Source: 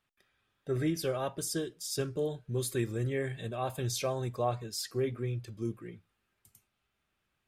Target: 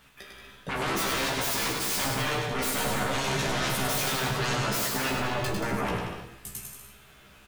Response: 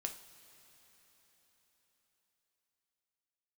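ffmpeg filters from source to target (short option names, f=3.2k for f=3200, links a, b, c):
-filter_complex "[0:a]areverse,acompressor=threshold=-38dB:ratio=6,areverse,aeval=exprs='0.0335*sin(PI/2*7.94*val(0)/0.0335)':c=same,asplit=2[a][b];[b]adelay=15,volume=-2.5dB[c];[a][c]amix=inputs=2:normalize=0,aecho=1:1:100|180|244|295.2|336.2:0.631|0.398|0.251|0.158|0.1[d];[1:a]atrim=start_sample=2205,afade=t=out:st=0.41:d=0.01,atrim=end_sample=18522[e];[d][e]afir=irnorm=-1:irlink=0,volume=2dB"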